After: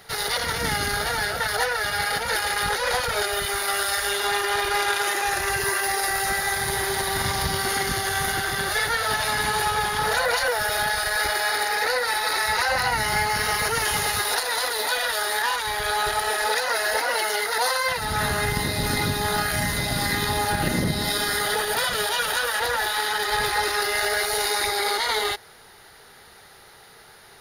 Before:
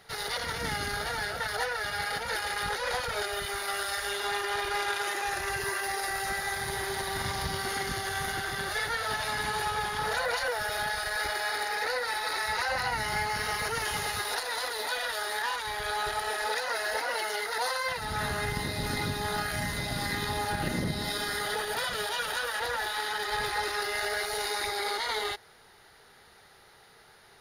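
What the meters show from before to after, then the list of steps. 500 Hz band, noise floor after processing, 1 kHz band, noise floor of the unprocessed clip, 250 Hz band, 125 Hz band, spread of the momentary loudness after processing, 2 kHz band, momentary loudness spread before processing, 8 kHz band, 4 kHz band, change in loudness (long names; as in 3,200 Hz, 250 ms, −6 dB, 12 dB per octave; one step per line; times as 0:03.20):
+7.0 dB, −49 dBFS, +7.0 dB, −56 dBFS, +7.0 dB, +7.0 dB, 2 LU, +7.0 dB, 2 LU, +10.0 dB, +8.0 dB, +7.5 dB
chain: high-shelf EQ 9,700 Hz +7 dB
level +7 dB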